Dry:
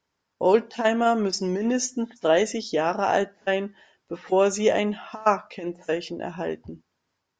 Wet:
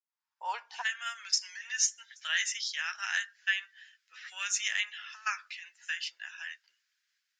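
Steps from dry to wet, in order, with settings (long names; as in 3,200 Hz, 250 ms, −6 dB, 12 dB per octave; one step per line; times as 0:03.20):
fade in at the beginning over 1.40 s
Chebyshev high-pass filter 860 Hz, order 4, from 0:00.81 1,600 Hz
level +2 dB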